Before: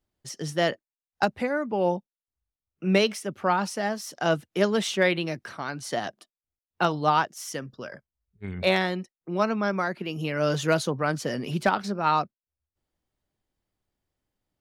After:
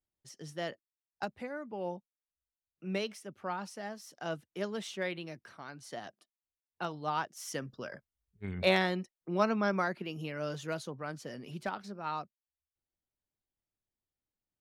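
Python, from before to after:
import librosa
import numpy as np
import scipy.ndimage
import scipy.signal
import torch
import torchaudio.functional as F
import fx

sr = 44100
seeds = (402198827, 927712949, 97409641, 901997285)

y = fx.gain(x, sr, db=fx.line((7.03, -13.5), (7.57, -4.0), (9.82, -4.0), (10.59, -14.0)))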